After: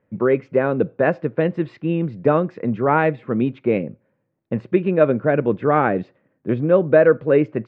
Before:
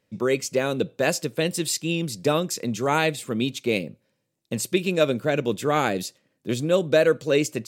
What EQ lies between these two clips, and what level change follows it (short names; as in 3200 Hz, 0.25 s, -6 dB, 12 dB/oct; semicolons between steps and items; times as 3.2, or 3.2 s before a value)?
LPF 1800 Hz 24 dB/oct; +5.5 dB